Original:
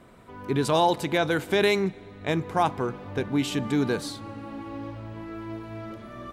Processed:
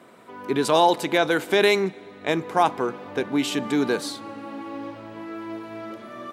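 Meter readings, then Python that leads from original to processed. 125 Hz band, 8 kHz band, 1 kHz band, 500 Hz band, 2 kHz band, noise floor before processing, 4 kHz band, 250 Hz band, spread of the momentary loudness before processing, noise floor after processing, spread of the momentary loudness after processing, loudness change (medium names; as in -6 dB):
-5.5 dB, +4.0 dB, +4.0 dB, +3.5 dB, +4.0 dB, -46 dBFS, +4.0 dB, +1.5 dB, 16 LU, -45 dBFS, 18 LU, +3.5 dB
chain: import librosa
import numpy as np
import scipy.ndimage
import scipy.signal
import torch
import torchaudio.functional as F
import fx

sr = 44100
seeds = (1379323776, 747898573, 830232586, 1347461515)

y = scipy.signal.sosfilt(scipy.signal.butter(2, 250.0, 'highpass', fs=sr, output='sos'), x)
y = F.gain(torch.from_numpy(y), 4.0).numpy()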